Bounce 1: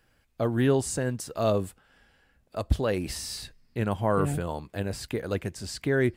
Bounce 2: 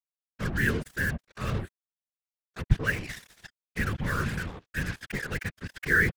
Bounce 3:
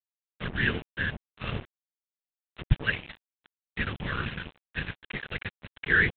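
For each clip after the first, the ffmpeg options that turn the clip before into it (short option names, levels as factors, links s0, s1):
-af "firequalizer=gain_entry='entry(120,0);entry(180,-13);entry(450,-10);entry(680,-29);entry(1600,11);entry(4300,-17)':delay=0.05:min_phase=1,acrusher=bits=5:mix=0:aa=0.5,afftfilt=real='hypot(re,im)*cos(2*PI*random(0))':imag='hypot(re,im)*sin(2*PI*random(1))':win_size=512:overlap=0.75,volume=2.37"
-af "equalizer=f=2900:t=o:w=0.76:g=9.5,aresample=8000,aeval=exprs='sgn(val(0))*max(abs(val(0))-0.02,0)':c=same,aresample=44100"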